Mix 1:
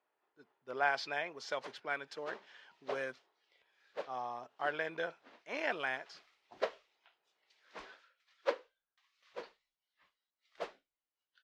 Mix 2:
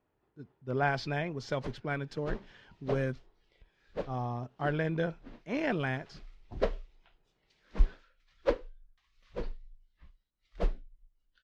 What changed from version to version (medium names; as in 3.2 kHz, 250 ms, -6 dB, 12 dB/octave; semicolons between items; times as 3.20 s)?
master: remove high-pass 670 Hz 12 dB/octave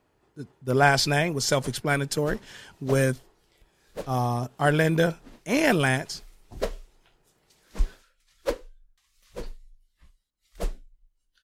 speech +9.0 dB; master: remove distance through air 230 m